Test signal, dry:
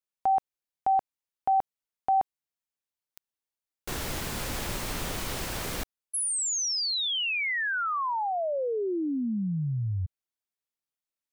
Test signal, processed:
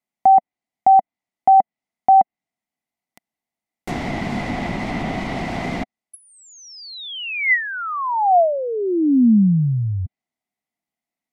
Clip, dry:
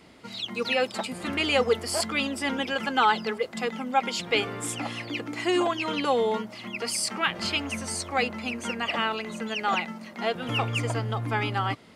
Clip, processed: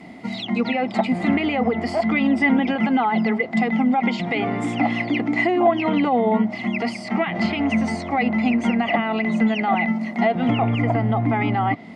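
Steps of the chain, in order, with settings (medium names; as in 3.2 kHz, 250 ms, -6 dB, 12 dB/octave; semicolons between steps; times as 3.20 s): peak limiter -21 dBFS; low-pass that closes with the level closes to 2.2 kHz, closed at -25.5 dBFS; small resonant body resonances 220/700/2000 Hz, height 17 dB, ringing for 20 ms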